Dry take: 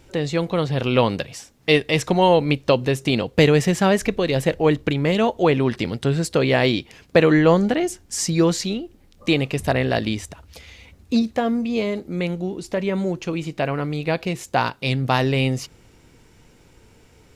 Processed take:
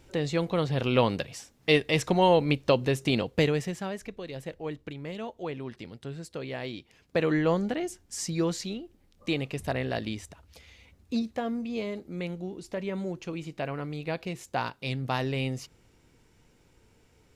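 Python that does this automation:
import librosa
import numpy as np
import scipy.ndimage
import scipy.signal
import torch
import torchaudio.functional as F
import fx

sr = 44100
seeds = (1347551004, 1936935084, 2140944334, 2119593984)

y = fx.gain(x, sr, db=fx.line((3.22, -5.5), (3.92, -18.0), (6.71, -18.0), (7.3, -10.0)))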